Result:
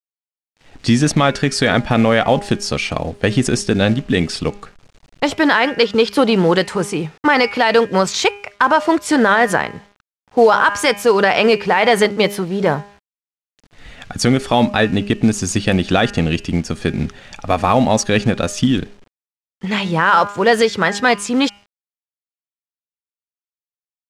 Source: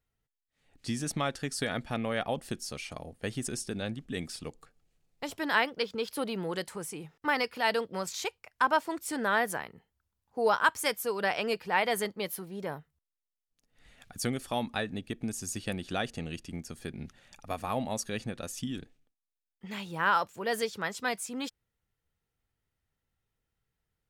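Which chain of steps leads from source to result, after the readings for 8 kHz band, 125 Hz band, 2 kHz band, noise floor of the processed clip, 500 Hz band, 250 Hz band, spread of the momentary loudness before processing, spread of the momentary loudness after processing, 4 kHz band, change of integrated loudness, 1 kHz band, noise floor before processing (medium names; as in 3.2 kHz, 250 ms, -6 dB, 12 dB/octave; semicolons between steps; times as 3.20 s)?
+12.5 dB, +20.0 dB, +14.5 dB, under -85 dBFS, +18.0 dB, +20.0 dB, 14 LU, 8 LU, +16.0 dB, +16.5 dB, +15.0 dB, under -85 dBFS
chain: de-hum 203 Hz, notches 15; companded quantiser 6-bit; distance through air 86 m; loudness maximiser +23 dB; trim -2 dB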